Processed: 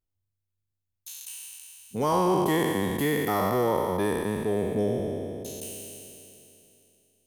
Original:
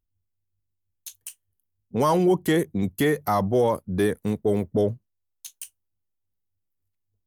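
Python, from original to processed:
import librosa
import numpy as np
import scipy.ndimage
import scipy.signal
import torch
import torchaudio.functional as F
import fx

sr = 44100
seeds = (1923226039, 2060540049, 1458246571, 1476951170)

y = fx.spec_trails(x, sr, decay_s=2.87)
y = y * 10.0 ** (-7.0 / 20.0)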